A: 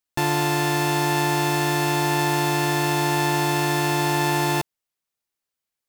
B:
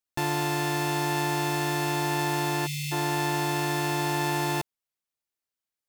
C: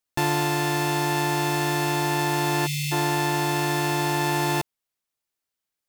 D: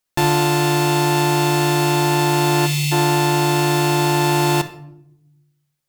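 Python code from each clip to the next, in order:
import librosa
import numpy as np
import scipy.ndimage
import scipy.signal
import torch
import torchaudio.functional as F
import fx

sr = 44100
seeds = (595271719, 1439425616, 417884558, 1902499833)

y1 = fx.spec_erase(x, sr, start_s=2.67, length_s=0.25, low_hz=200.0, high_hz=1900.0)
y1 = y1 * 10.0 ** (-5.5 / 20.0)
y2 = fx.rider(y1, sr, range_db=10, speed_s=0.5)
y2 = y2 * 10.0 ** (3.5 / 20.0)
y3 = fx.room_shoebox(y2, sr, seeds[0], volume_m3=1900.0, walls='furnished', distance_m=1.0)
y3 = y3 * 10.0 ** (5.5 / 20.0)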